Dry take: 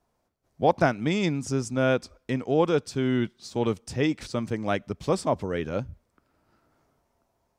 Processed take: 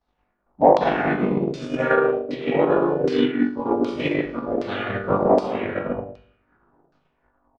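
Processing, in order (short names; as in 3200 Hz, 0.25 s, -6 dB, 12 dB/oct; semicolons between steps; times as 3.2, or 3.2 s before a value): comb 4.1 ms, depth 37%; on a send: flutter echo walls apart 3.5 m, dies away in 0.68 s; on the sum: non-linear reverb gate 0.27 s flat, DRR -4.5 dB; harmoniser +3 st -3 dB, +4 st -15 dB; in parallel at -6 dB: soft clip -4 dBFS, distortion -19 dB; on the sum: LFO low-pass saw down 1.3 Hz 590–4800 Hz; transient shaper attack +10 dB, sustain -5 dB; high shelf 5400 Hz -6 dB; gain -14 dB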